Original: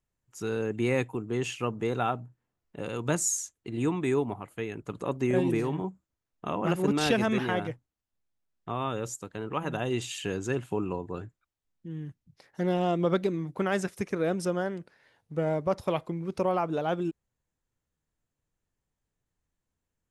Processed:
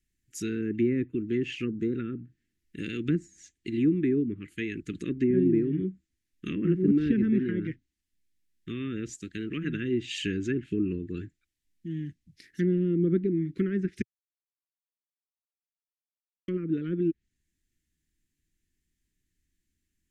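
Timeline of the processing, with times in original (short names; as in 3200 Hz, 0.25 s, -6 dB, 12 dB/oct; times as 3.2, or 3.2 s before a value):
1.66–1.92 spectral gain 1600–3700 Hz -11 dB
14.02–16.48 mute
whole clip: treble ducked by the level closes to 800 Hz, closed at -24 dBFS; Chebyshev band-stop 340–1800 Hz, order 3; bell 120 Hz -9 dB 0.55 oct; gain +6.5 dB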